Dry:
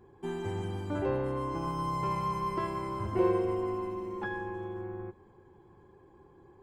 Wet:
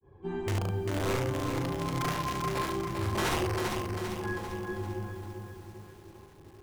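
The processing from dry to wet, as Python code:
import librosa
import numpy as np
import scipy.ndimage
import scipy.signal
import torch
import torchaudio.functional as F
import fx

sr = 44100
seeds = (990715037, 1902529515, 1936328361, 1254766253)

p1 = scipy.signal.sosfilt(scipy.signal.butter(2, 4100.0, 'lowpass', fs=sr, output='sos'), x)
p2 = fx.low_shelf(p1, sr, hz=320.0, db=8.0)
p3 = fx.hum_notches(p2, sr, base_hz=60, count=9)
p4 = fx.rider(p3, sr, range_db=4, speed_s=0.5)
p5 = p3 + (p4 * librosa.db_to_amplitude(-2.5))
p6 = (np.mod(10.0 ** (16.0 / 20.0) * p5 + 1.0, 2.0) - 1.0) / 10.0 ** (16.0 / 20.0)
p7 = fx.granulator(p6, sr, seeds[0], grain_ms=162.0, per_s=20.0, spray_ms=24.0, spread_st=0)
p8 = p7 + fx.room_early_taps(p7, sr, ms=(39, 72), db=(-5.5, -3.5), dry=0)
p9 = fx.echo_crushed(p8, sr, ms=395, feedback_pct=55, bits=8, wet_db=-5.0)
y = p9 * librosa.db_to_amplitude(-6.5)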